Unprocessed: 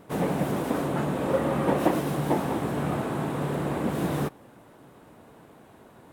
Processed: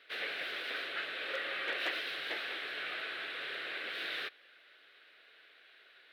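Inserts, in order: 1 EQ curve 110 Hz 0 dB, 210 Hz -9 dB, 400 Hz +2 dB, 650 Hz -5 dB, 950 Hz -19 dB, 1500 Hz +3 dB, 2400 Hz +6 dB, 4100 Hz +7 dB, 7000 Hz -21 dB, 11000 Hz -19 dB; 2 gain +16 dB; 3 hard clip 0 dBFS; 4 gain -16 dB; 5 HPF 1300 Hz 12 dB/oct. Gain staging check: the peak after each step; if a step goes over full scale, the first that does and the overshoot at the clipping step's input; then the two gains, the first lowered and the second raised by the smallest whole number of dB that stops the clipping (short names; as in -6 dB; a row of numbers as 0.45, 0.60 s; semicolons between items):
-12.0, +4.0, 0.0, -16.0, -21.5 dBFS; step 2, 4.0 dB; step 2 +12 dB, step 4 -12 dB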